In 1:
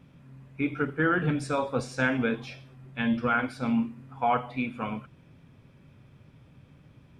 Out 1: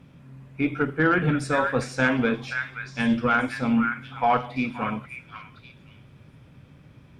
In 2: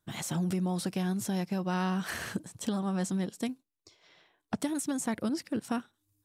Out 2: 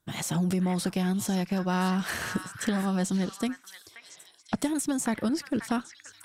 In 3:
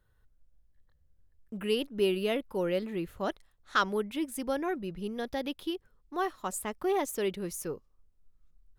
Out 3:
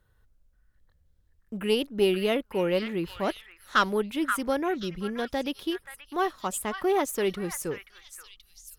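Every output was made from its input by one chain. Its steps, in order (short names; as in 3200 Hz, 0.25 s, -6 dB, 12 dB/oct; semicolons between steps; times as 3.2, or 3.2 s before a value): added harmonics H 4 -26 dB, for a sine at -12.5 dBFS; delay with a stepping band-pass 0.529 s, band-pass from 1700 Hz, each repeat 1.4 oct, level -4 dB; gain +4 dB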